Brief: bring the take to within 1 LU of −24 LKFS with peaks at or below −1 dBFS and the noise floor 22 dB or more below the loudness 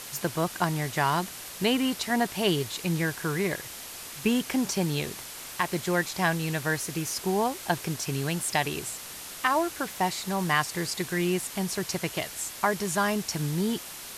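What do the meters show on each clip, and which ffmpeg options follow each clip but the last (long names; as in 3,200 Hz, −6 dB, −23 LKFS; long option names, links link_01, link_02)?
background noise floor −41 dBFS; target noise floor −51 dBFS; integrated loudness −28.5 LKFS; sample peak −10.0 dBFS; target loudness −24.0 LKFS
→ -af "afftdn=noise_reduction=10:noise_floor=-41"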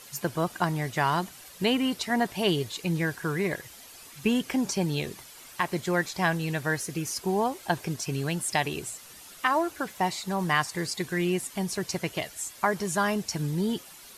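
background noise floor −48 dBFS; target noise floor −51 dBFS
→ -af "afftdn=noise_reduction=6:noise_floor=-48"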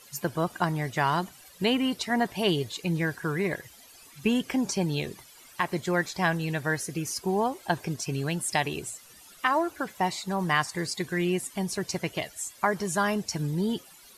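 background noise floor −52 dBFS; integrated loudness −28.5 LKFS; sample peak −10.5 dBFS; target loudness −24.0 LKFS
→ -af "volume=4.5dB"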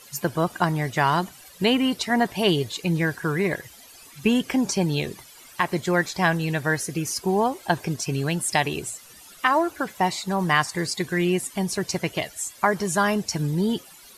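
integrated loudness −24.0 LKFS; sample peak −6.0 dBFS; background noise floor −48 dBFS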